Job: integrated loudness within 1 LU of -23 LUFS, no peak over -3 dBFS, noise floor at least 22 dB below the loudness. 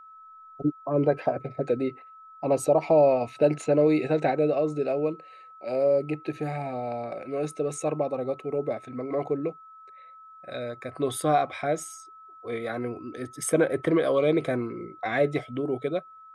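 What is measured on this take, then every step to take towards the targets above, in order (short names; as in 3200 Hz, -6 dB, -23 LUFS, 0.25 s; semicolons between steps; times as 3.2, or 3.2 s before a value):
steady tone 1300 Hz; tone level -46 dBFS; loudness -27.0 LUFS; peak -10.5 dBFS; loudness target -23.0 LUFS
-> notch 1300 Hz, Q 30; gain +4 dB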